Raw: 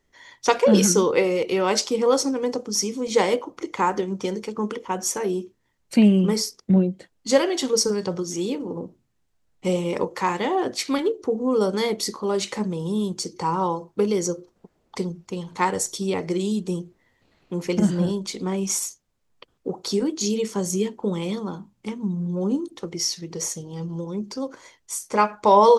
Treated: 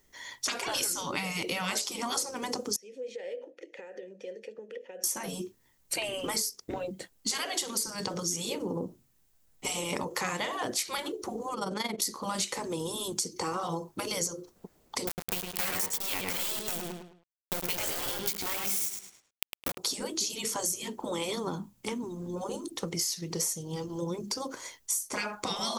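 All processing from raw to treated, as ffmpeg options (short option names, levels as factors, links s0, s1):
-filter_complex "[0:a]asettb=1/sr,asplit=3[s0][s1][s2];[s0]atrim=end=2.764[s3];[s1]atrim=start=2.76:end=5.04,asetpts=PTS-STARTPTS,afade=t=in:d=0.004:c=qsin,afade=t=out:st=2.276:d=0.004:c=qsin,bandreject=f=50:t=h:w=6,bandreject=f=100:t=h:w=6,bandreject=f=150:t=h:w=6,bandreject=f=200:t=h:w=6,bandreject=f=250:t=h:w=6,bandreject=f=300:t=h:w=6,acompressor=threshold=0.0398:ratio=10:attack=3.2:release=140:knee=1:detection=peak,asplit=3[s4][s5][s6];[s4]bandpass=f=530:t=q:w=8,volume=1[s7];[s5]bandpass=f=1840:t=q:w=8,volume=0.501[s8];[s6]bandpass=f=2480:t=q:w=8,volume=0.355[s9];[s7][s8][s9]amix=inputs=3:normalize=0[s10];[s2]atrim=start=5.036[s11];[s3][s10]acrossfade=d=0.004:c1=hsin:c2=qsin[s12];[s12][s11]acrossfade=d=0.004:c1=qsin:c2=hsin,asettb=1/sr,asplit=3[s13][s14][s15];[s13]atrim=end=11.544[s16];[s14]atrim=start=11.54:end=12.02,asetpts=PTS-STARTPTS,afade=t=in:d=0.004:c=qsin,afade=t=out:st=0.476:d=0.004:c=qsin,lowpass=f=3300:p=1,tremolo=f=22:d=0.788[s17];[s15]atrim=start=12.016[s18];[s16][s17]acrossfade=d=0.004:c1=hsin:c2=qsin[s19];[s19][s18]acrossfade=d=0.004:c1=qsin:c2=hsin,asettb=1/sr,asplit=3[s20][s21][s22];[s20]atrim=end=15.074[s23];[s21]atrim=start=15.07:end=19.78,asetpts=PTS-STARTPTS,afade=t=in:d=0.004:c=qsin,afade=t=out:st=4.706:d=0.004:c=qsin,equalizer=f=2500:w=0.85:g=9.5,aeval=exprs='val(0)*gte(abs(val(0)),0.0562)':c=same,asplit=2[s24][s25];[s25]adelay=106,lowpass=f=4500:p=1,volume=0.596,asplit=2[s26][s27];[s27]adelay=106,lowpass=f=4500:p=1,volume=0.31,asplit=2[s28][s29];[s29]adelay=106,lowpass=f=4500:p=1,volume=0.31,asplit=2[s30][s31];[s31]adelay=106,lowpass=f=4500:p=1,volume=0.31[s32];[s24][s26][s28][s30][s32]amix=inputs=5:normalize=0,atrim=end_sample=207711[s33];[s22]atrim=start=19.776[s34];[s23][s33]acrossfade=d=0.004:c1=hsin:c2=qsin[s35];[s35][s34]acrossfade=d=0.004:c1=qsin:c2=hsin,aemphasis=mode=production:type=50fm,afftfilt=real='re*lt(hypot(re,im),0.282)':imag='im*lt(hypot(re,im),0.282)':win_size=1024:overlap=0.75,acompressor=threshold=0.0316:ratio=6,volume=1.19"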